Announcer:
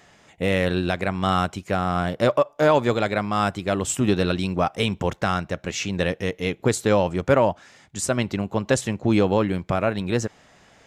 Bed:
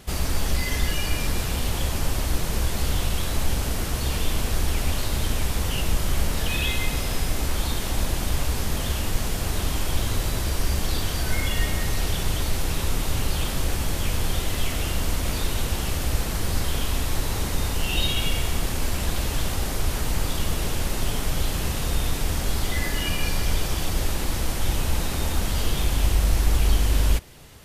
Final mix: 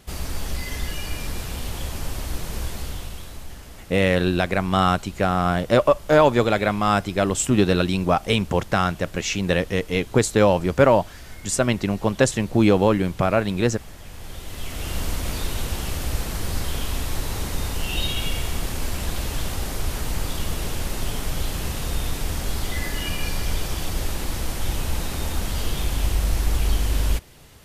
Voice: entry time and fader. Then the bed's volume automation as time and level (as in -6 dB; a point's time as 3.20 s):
3.50 s, +2.5 dB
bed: 2.67 s -4.5 dB
3.65 s -16.5 dB
14.05 s -16.5 dB
14.97 s -1.5 dB